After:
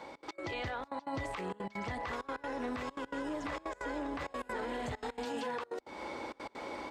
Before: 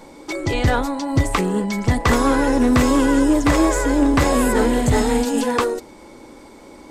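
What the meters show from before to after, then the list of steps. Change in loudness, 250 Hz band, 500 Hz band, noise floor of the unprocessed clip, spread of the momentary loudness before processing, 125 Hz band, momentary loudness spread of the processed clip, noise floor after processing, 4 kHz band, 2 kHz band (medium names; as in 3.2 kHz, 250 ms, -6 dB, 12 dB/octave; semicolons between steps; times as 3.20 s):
-21.5 dB, -24.5 dB, -19.0 dB, -43 dBFS, 6 LU, -25.5 dB, 5 LU, -61 dBFS, -18.0 dB, -16.5 dB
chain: three-band isolator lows -13 dB, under 490 Hz, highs -18 dB, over 4.5 kHz; compression 6:1, threshold -38 dBFS, peak gain reduction 20.5 dB; frequency-shifting echo 153 ms, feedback 34%, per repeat -120 Hz, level -23 dB; trance gate "xx.x.xxxx" 197 bpm -24 dB; bass shelf 110 Hz +5 dB; level rider gain up to 6.5 dB; high-pass 62 Hz 12 dB/octave; peak limiter -28 dBFS, peak gain reduction 11 dB; trim -1.5 dB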